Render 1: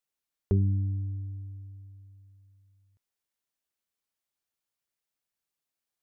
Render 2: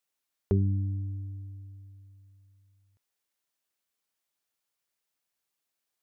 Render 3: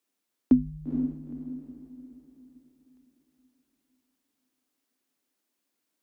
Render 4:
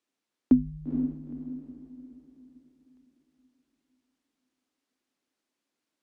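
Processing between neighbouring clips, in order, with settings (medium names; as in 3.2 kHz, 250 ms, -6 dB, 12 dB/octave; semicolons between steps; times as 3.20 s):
bass shelf 210 Hz -6.5 dB; trim +4 dB
resonant high-pass 410 Hz, resonance Q 4.9; echo that smears into a reverb 468 ms, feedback 41%, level -6 dB; frequency shift -140 Hz; trim +1.5 dB
distance through air 57 m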